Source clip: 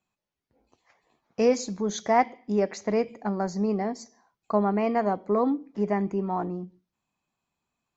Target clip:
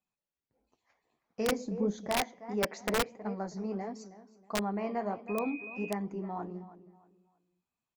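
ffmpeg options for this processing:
-filter_complex "[0:a]asplit=3[s0][s1][s2];[s0]afade=t=out:st=2.6:d=0.02[s3];[s1]equalizer=f=720:w=0.37:g=6.5,afade=t=in:st=2.6:d=0.02,afade=t=out:st=3.08:d=0.02[s4];[s2]afade=t=in:st=3.08:d=0.02[s5];[s3][s4][s5]amix=inputs=3:normalize=0,asplit=2[s6][s7];[s7]adelay=319,lowpass=f=4800:p=1,volume=0.168,asplit=2[s8][s9];[s9]adelay=319,lowpass=f=4800:p=1,volume=0.3,asplit=2[s10][s11];[s11]adelay=319,lowpass=f=4800:p=1,volume=0.3[s12];[s8][s10][s12]amix=inputs=3:normalize=0[s13];[s6][s13]amix=inputs=2:normalize=0,asettb=1/sr,asplit=3[s14][s15][s16];[s14]atrim=end=5.284[s17];[s15]atrim=start=5.28:end=5.91,asetpts=PTS-STARTPTS,afade=t=in:d=0.004:c=qsin,afade=t=out:st=0.626:d=0.004:c=qsin,aeval=exprs='val(0)+0.0224*sin(2*PI*2500*n/s)':c=same[s18];[s16]atrim=start=5.906[s19];[s17][s18]acrossfade=d=0.004:c1=hsin:c2=qsin[s20];[s20][s19]acrossfade=d=0.004:c1=qsin:c2=hsin,flanger=delay=3.8:depth=8.7:regen=-47:speed=1.5:shape=sinusoidal,aeval=exprs='(mod(6.31*val(0)+1,2)-1)/6.31':c=same,asettb=1/sr,asplit=3[s21][s22][s23];[s21]atrim=end=1.524[s24];[s22]atrim=start=1.52:end=2.09,asetpts=PTS-STARTPTS,afade=t=in:d=0.004:c=qsin,afade=t=out:st=0.566:d=0.004:c=qsin,tiltshelf=f=1200:g=8.5[s25];[s23]atrim=start=2.086[s26];[s24][s25]acrossfade=d=0.004:c1=hsin:c2=qsin[s27];[s27][s26]acrossfade=d=0.004:c1=qsin:c2=hsin,volume=0.531"

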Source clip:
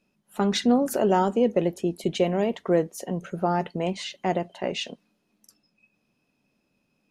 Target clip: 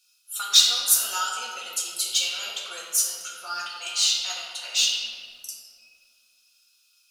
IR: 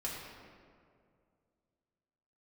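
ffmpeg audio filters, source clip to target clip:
-filter_complex "[0:a]highpass=f=1400:t=q:w=8.7,aexciter=amount=15.1:drive=9.6:freq=3100,asplit=2[s0][s1];[s1]asoftclip=type=tanh:threshold=0.531,volume=0.376[s2];[s0][s2]amix=inputs=2:normalize=0,flanger=delay=4.1:depth=5.9:regen=40:speed=0.62:shape=sinusoidal[s3];[1:a]atrim=start_sample=2205[s4];[s3][s4]afir=irnorm=-1:irlink=0,volume=0.316"

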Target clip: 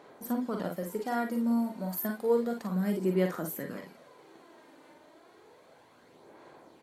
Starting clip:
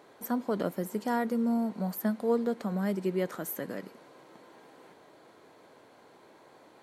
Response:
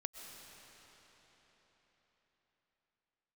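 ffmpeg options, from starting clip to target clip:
-filter_complex "[0:a]asettb=1/sr,asplit=3[s0][s1][s2];[s0]atrim=end=1.314[s3];[s1]atrim=start=1.31:end=3.45,asetpts=PTS-STARTPTS,afade=t=in:d=0.004:c=qsin,afade=t=out:st=2.136:d=0.004:c=qsin,highshelf=f=9700:g=8.5[s4];[s2]atrim=start=3.446[s5];[s3][s4]acrossfade=d=0.004:c1=hsin:c2=qsin[s6];[s6][s5]acrossfade=d=0.004:c1=qsin:c2=hsin,aphaser=in_gain=1:out_gain=1:delay=3.4:decay=0.45:speed=0.31:type=sinusoidal,asplit=2[s7][s8];[s8]aecho=0:1:43|55:0.501|0.422[s9];[s7][s9]amix=inputs=2:normalize=0,volume=0.668"

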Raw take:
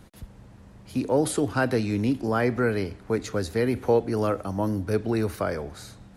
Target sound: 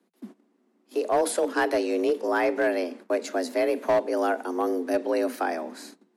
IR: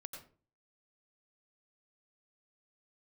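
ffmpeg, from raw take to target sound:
-af "agate=range=0.112:threshold=0.00708:ratio=16:detection=peak,afreqshift=170,asoftclip=type=hard:threshold=0.158"

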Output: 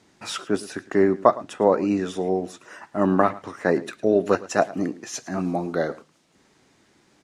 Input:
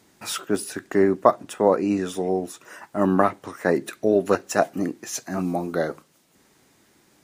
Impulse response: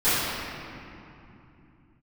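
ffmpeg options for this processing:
-af "lowpass=6800,aecho=1:1:109:0.112"

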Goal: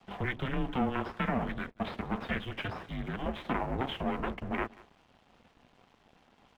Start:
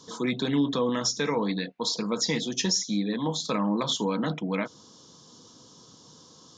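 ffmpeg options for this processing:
-filter_complex "[0:a]aeval=exprs='max(val(0),0)':c=same,asplit=2[s0][s1];[s1]acompressor=threshold=0.0158:ratio=6,volume=1.06[s2];[s0][s2]amix=inputs=2:normalize=0,highpass=f=330:t=q:w=0.5412,highpass=f=330:t=q:w=1.307,lowpass=f=3000:t=q:w=0.5176,lowpass=f=3000:t=q:w=0.7071,lowpass=f=3000:t=q:w=1.932,afreqshift=-260,asplit=2[s3][s4];[s4]adelay=186.6,volume=0.1,highshelf=f=4000:g=-4.2[s5];[s3][s5]amix=inputs=2:normalize=0,aeval=exprs='sgn(val(0))*max(abs(val(0))-0.00106,0)':c=same"

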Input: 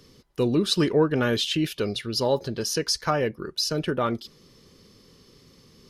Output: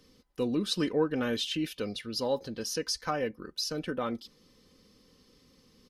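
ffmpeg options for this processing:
-af "aecho=1:1:3.9:0.47,volume=0.398"

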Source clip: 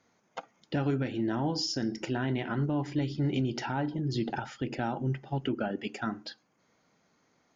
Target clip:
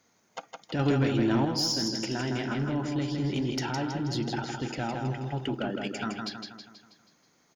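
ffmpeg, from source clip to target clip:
-filter_complex "[0:a]crystalizer=i=2:c=0,aecho=1:1:161|322|483|644|805|966:0.562|0.281|0.141|0.0703|0.0351|0.0176,asoftclip=type=tanh:threshold=0.0944,asettb=1/sr,asplit=3[s0][s1][s2];[s0]atrim=end=0.794[s3];[s1]atrim=start=0.79:end=1.45,asetpts=PTS-STARTPTS,afade=t=in:d=0.004:c=qsin,afade=t=out:st=0.656:d=0.004:c=qsin,acontrast=27[s4];[s2]atrim=start=1.446[s5];[s3][s4]acrossfade=d=0.004:c1=hsin:c2=qsin[s6];[s6][s5]acrossfade=d=0.004:c1=qsin:c2=hsin"

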